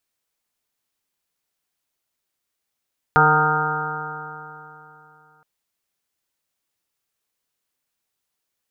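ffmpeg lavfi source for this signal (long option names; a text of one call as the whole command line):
ffmpeg -f lavfi -i "aevalsrc='0.1*pow(10,-3*t/3.06)*sin(2*PI*152.05*t)+0.0355*pow(10,-3*t/3.06)*sin(2*PI*304.38*t)+0.0891*pow(10,-3*t/3.06)*sin(2*PI*457.29*t)+0.0119*pow(10,-3*t/3.06)*sin(2*PI*611.06*t)+0.119*pow(10,-3*t/3.06)*sin(2*PI*765.96*t)+0.133*pow(10,-3*t/3.06)*sin(2*PI*922.28*t)+0.0188*pow(10,-3*t/3.06)*sin(2*PI*1080.3*t)+0.15*pow(10,-3*t/3.06)*sin(2*PI*1240.27*t)+0.178*pow(10,-3*t/3.06)*sin(2*PI*1402.47*t)+0.0562*pow(10,-3*t/3.06)*sin(2*PI*1567.15*t)':duration=2.27:sample_rate=44100" out.wav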